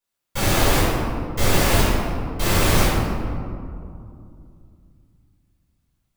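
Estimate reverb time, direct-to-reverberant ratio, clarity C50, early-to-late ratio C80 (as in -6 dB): 2.4 s, -12.5 dB, -2.5 dB, 0.0 dB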